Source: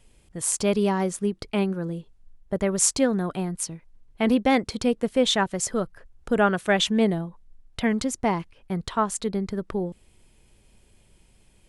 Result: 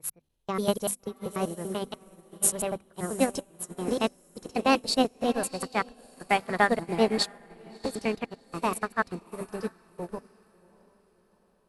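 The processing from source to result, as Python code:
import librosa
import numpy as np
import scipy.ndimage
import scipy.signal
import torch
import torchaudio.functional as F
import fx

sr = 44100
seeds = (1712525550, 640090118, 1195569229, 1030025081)

p1 = fx.block_reorder(x, sr, ms=97.0, group=5)
p2 = fx.level_steps(p1, sr, step_db=15)
p3 = p1 + (p2 * librosa.db_to_amplitude(3.0))
p4 = fx.hum_notches(p3, sr, base_hz=50, count=5)
p5 = fx.formant_shift(p4, sr, semitones=4)
p6 = p5 + fx.echo_diffused(p5, sr, ms=689, feedback_pct=47, wet_db=-9.0, dry=0)
p7 = fx.upward_expand(p6, sr, threshold_db=-30.0, expansion=2.5)
y = p7 * librosa.db_to_amplitude(-3.0)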